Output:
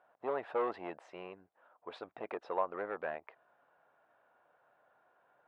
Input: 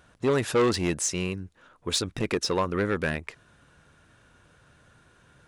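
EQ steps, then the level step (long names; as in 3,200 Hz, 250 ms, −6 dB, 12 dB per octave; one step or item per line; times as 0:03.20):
resonant band-pass 720 Hz, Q 3.2
high-frequency loss of the air 470 metres
spectral tilt +3.5 dB per octave
+3.5 dB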